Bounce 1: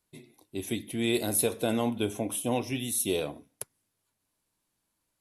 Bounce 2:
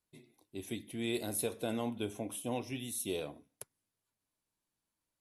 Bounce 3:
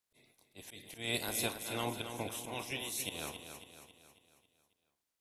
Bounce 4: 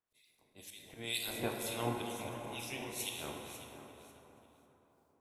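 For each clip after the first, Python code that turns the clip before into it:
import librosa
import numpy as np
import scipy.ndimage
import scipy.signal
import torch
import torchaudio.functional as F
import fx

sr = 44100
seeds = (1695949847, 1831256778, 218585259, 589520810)

y1 = fx.high_shelf(x, sr, hz=12000.0, db=-4.5)
y1 = F.gain(torch.from_numpy(y1), -8.0).numpy()
y2 = fx.spec_clip(y1, sr, under_db=19)
y2 = fx.auto_swell(y2, sr, attack_ms=173.0)
y2 = fx.echo_feedback(y2, sr, ms=273, feedback_pct=49, wet_db=-8.5)
y3 = fx.harmonic_tremolo(y2, sr, hz=2.1, depth_pct=100, crossover_hz=2100.0)
y3 = fx.rev_plate(y3, sr, seeds[0], rt60_s=4.1, hf_ratio=0.4, predelay_ms=0, drr_db=1.5)
y3 = F.gain(torch.from_numpy(y3), 1.5).numpy()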